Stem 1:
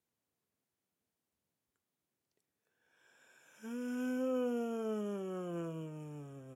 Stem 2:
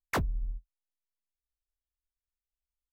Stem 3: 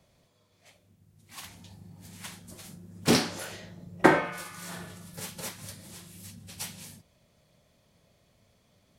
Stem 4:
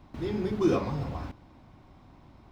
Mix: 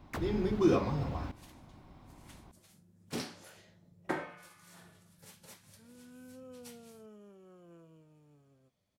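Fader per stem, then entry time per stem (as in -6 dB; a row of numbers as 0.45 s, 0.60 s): -16.0 dB, -11.5 dB, -16.0 dB, -1.5 dB; 2.15 s, 0.00 s, 0.05 s, 0.00 s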